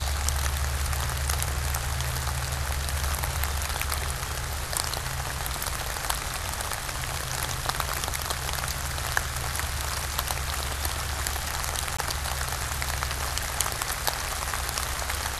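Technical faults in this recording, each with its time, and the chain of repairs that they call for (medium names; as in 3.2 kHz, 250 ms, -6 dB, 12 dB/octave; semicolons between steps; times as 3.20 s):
11.97–11.98 s: dropout 15 ms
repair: interpolate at 11.97 s, 15 ms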